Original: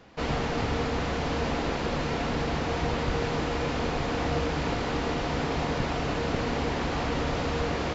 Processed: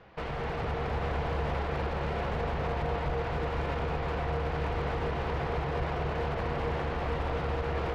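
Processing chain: low-pass 2.7 kHz 12 dB/octave; peaking EQ 260 Hz -13.5 dB 0.42 oct; peak limiter -25.5 dBFS, peak gain reduction 9.5 dB; overload inside the chain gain 29 dB; on a send: feedback echo behind a low-pass 238 ms, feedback 74%, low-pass 1.3 kHz, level -4 dB

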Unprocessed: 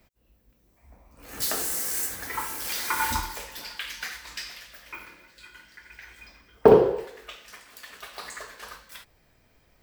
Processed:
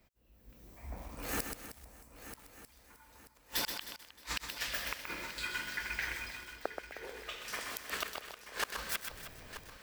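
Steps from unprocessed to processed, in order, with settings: level rider gain up to 16 dB; inverted gate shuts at -14 dBFS, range -41 dB; multi-head delay 311 ms, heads first and third, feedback 53%, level -13.5 dB; bit-crushed delay 127 ms, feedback 35%, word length 7-bit, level -5.5 dB; trim -6.5 dB

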